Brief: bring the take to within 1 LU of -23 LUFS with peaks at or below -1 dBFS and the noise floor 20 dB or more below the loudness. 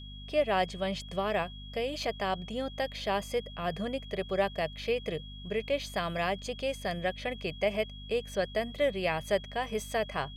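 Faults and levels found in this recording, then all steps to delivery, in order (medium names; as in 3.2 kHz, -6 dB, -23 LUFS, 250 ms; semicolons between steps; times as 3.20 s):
hum 50 Hz; highest harmonic 250 Hz; hum level -43 dBFS; steady tone 3.3 kHz; tone level -48 dBFS; loudness -32.5 LUFS; peak level -15.5 dBFS; loudness target -23.0 LUFS
-> hum notches 50/100/150/200/250 Hz; band-stop 3.3 kHz, Q 30; trim +9.5 dB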